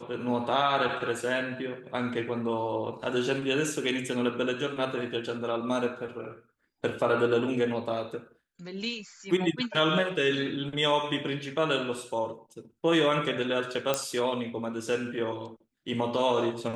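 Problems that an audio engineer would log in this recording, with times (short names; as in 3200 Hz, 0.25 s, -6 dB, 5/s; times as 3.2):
13.94 pop -11 dBFS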